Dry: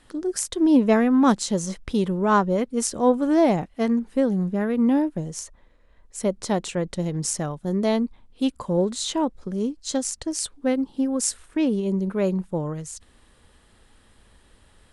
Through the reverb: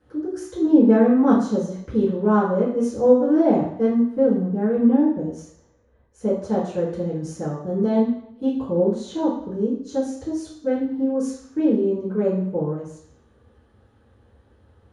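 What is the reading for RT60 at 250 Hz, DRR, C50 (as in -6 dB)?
0.70 s, -10.5 dB, 5.0 dB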